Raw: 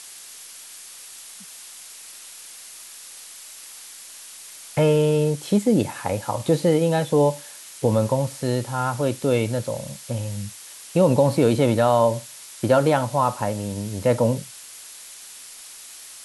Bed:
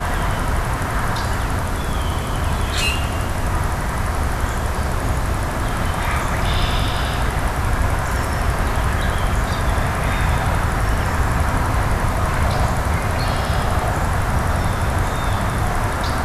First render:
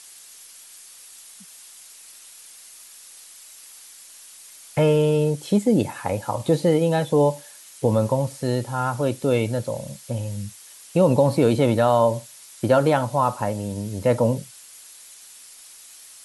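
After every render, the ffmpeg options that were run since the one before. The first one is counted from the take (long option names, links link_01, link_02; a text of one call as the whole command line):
ffmpeg -i in.wav -af "afftdn=noise_reduction=6:noise_floor=-42" out.wav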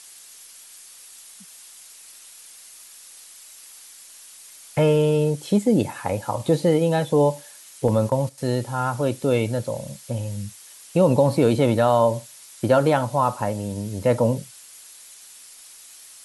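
ffmpeg -i in.wav -filter_complex "[0:a]asettb=1/sr,asplit=3[link_01][link_02][link_03];[link_01]atrim=end=7.884[link_04];[link_02]atrim=start=7.88:end=8.38,asetpts=PTS-STARTPTS,afade=type=in:duration=0.004:curve=qsin,afade=type=out:start_time=0.496:duration=0.004:curve=qsin,agate=range=-11dB:threshold=-30dB:ratio=16:release=100:detection=peak[link_05];[link_03]atrim=start=8.376[link_06];[link_04][link_05]acrossfade=duration=0.004:curve1=hsin:curve2=qsin[link_07];[link_07][link_06]acrossfade=duration=0.004:curve1=qsin:curve2=hsin" out.wav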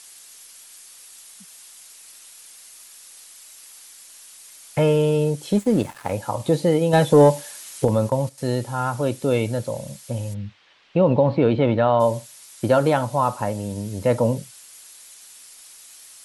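ffmpeg -i in.wav -filter_complex "[0:a]asettb=1/sr,asplit=3[link_01][link_02][link_03];[link_01]atrim=end=5.524[link_04];[link_02]atrim=start=5.52:end=6.13,asetpts=PTS-STARTPTS,afade=type=in:duration=0.004:curve=qsin,afade=type=out:start_time=0.606:duration=0.004:curve=qsin,aeval=exprs='sgn(val(0))*max(abs(val(0))-0.0133,0)':channel_layout=same[link_05];[link_03]atrim=start=6.126[link_06];[link_04][link_05]acrossfade=duration=0.004:curve1=hsin:curve2=qsin[link_07];[link_07][link_06]acrossfade=duration=0.004:curve1=qsin:curve2=hsin,asettb=1/sr,asplit=3[link_08][link_09][link_10];[link_08]atrim=end=6.934[link_11];[link_09]atrim=start=6.93:end=7.85,asetpts=PTS-STARTPTS,afade=type=in:duration=0.004:curve=qsin,afade=type=out:start_time=0.916:duration=0.004:curve=qsin,acontrast=61[link_12];[link_10]atrim=start=7.846[link_13];[link_11][link_12]acrossfade=duration=0.004:curve1=hsin:curve2=qsin[link_14];[link_14][link_13]acrossfade=duration=0.004:curve1=qsin:curve2=hsin,asplit=3[link_15][link_16][link_17];[link_15]afade=type=out:start_time=10.33:duration=0.02[link_18];[link_16]lowpass=frequency=3400:width=0.5412,lowpass=frequency=3400:width=1.3066,afade=type=in:start_time=10.33:duration=0.02,afade=type=out:start_time=11.99:duration=0.02[link_19];[link_17]afade=type=in:start_time=11.99:duration=0.02[link_20];[link_18][link_19][link_20]amix=inputs=3:normalize=0" out.wav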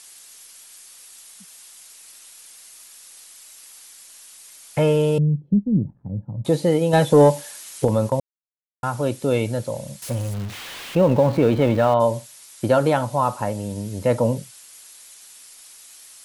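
ffmpeg -i in.wav -filter_complex "[0:a]asettb=1/sr,asplit=3[link_01][link_02][link_03];[link_01]atrim=end=5.184[link_04];[link_02]atrim=start=5.18:end=6.45,asetpts=PTS-STARTPTS,afade=type=in:duration=0.004:curve=qsin,afade=type=out:start_time=1.266:duration=0.004:curve=qsin,lowpass=frequency=170:width_type=q:width=2[link_05];[link_03]atrim=start=6.446[link_06];[link_04][link_05]acrossfade=duration=0.004:curve1=hsin:curve2=qsin[link_07];[link_07][link_06]acrossfade=duration=0.004:curve1=qsin:curve2=hsin,asettb=1/sr,asplit=3[link_08][link_09][link_10];[link_08]atrim=end=10.024[link_11];[link_09]atrim=start=10.02:end=11.94,asetpts=PTS-STARTPTS,afade=type=in:duration=0.004:curve=qsin,afade=type=out:start_time=1.916:duration=0.004:curve=qsin,aeval=exprs='val(0)+0.5*0.0299*sgn(val(0))':channel_layout=same[link_12];[link_10]atrim=start=11.936[link_13];[link_11][link_12]acrossfade=duration=0.004:curve1=hsin:curve2=qsin[link_14];[link_14][link_13]acrossfade=duration=0.004:curve1=qsin:curve2=hsin,asplit=3[link_15][link_16][link_17];[link_15]atrim=end=8.2,asetpts=PTS-STARTPTS,afade=type=out:start_time=8.196:duration=0.004:curve=hsin[link_18];[link_16]atrim=start=8.2:end=8.83,asetpts=PTS-STARTPTS,volume=0[link_19];[link_17]atrim=start=8.83,asetpts=PTS-STARTPTS,afade=type=in:duration=0.004:curve=hsin[link_20];[link_18][link_19][link_20]concat=n=3:v=0:a=1" out.wav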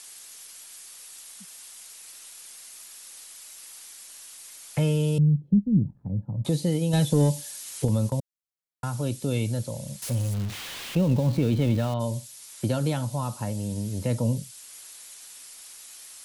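ffmpeg -i in.wav -filter_complex "[0:a]acrossover=split=250|3000[link_01][link_02][link_03];[link_02]acompressor=threshold=-44dB:ratio=2[link_04];[link_01][link_04][link_03]amix=inputs=3:normalize=0" out.wav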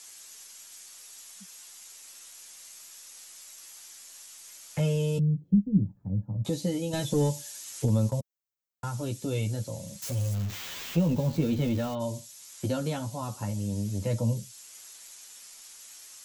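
ffmpeg -i in.wav -filter_complex "[0:a]flanger=delay=8.8:depth=3.6:regen=-4:speed=0.13:shape=triangular,acrossover=split=1700[link_01][link_02];[link_02]aexciter=amount=1.2:drive=4.6:freq=5800[link_03];[link_01][link_03]amix=inputs=2:normalize=0" out.wav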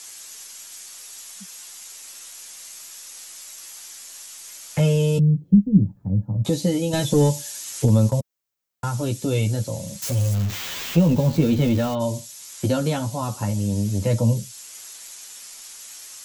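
ffmpeg -i in.wav -af "volume=8dB" out.wav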